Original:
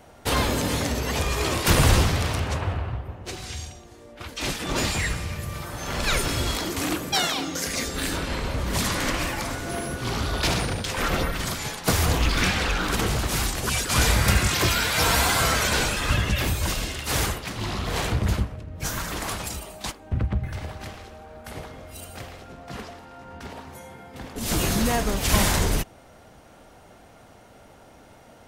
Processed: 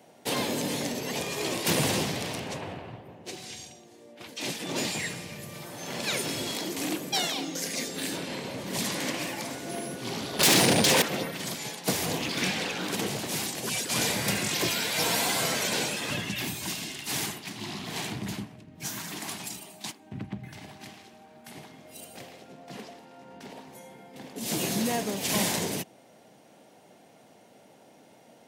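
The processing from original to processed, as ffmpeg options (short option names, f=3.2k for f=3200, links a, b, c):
-filter_complex "[0:a]asettb=1/sr,asplit=3[a][b][c];[a]atrim=end=10.394[d];[b]atrim=start=10.39:end=11.02,asetpts=PTS-STARTPTS,afade=t=in:d=0.004:c=qsin,afade=t=out:st=0.626:d=0.004:c=qsin,aeval=exprs='0.266*sin(PI/2*4.47*val(0)/0.266)':c=same[e];[c]atrim=start=11.016[f];[d][e]acrossfade=d=0.004:c1=hsin:c2=qsin[g];[g][f]acrossfade=d=0.004:c1=qsin:c2=hsin,asettb=1/sr,asplit=3[h][i][j];[h]atrim=end=16.224[k];[i]atrim=start=16.22:end=21.85,asetpts=PTS-STARTPTS,afade=t=in:d=0.004:c=qsin,afade=t=out:st=5.626:d=0.004:c=qsin,equalizer=f=520:t=o:w=0.47:g=-13[l];[j]atrim=start=21.846[m];[k][l]acrossfade=d=0.004:c1=hsin:c2=qsin[n];[n][m]acrossfade=d=0.004:c1=qsin:c2=hsin,highpass=f=150:w=0.5412,highpass=f=150:w=1.3066,equalizer=f=1.3k:w=2.1:g=-9.5,volume=-3.5dB"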